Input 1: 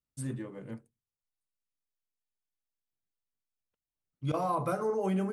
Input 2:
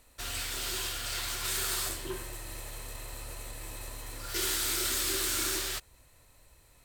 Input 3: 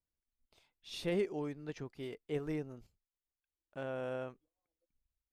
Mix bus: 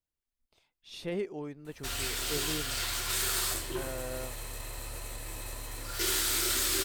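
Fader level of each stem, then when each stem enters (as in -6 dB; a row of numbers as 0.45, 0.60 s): off, +1.5 dB, -0.5 dB; off, 1.65 s, 0.00 s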